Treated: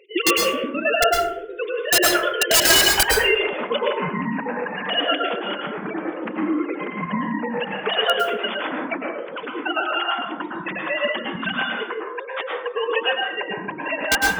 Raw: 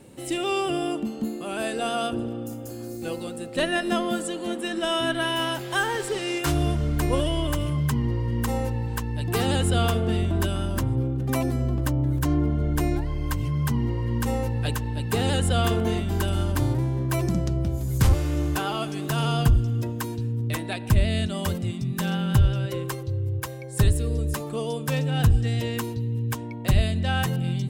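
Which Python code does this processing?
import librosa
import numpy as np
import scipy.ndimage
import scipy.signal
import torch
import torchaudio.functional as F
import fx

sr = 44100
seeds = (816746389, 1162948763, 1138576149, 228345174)

y = fx.sine_speech(x, sr)
y = fx.highpass(y, sr, hz=1200.0, slope=6)
y = fx.step_gate(y, sr, bpm=147, pattern='x.xx.xx.xxx.x.', floor_db=-12.0, edge_ms=4.5)
y = fx.stretch_vocoder(y, sr, factor=0.52)
y = (np.mod(10.0 ** (17.5 / 20.0) * y + 1.0, 2.0) - 1.0) / 10.0 ** (17.5 / 20.0)
y = fx.rev_plate(y, sr, seeds[0], rt60_s=0.68, hf_ratio=0.45, predelay_ms=95, drr_db=-1.0)
y = y * librosa.db_to_amplitude(7.5)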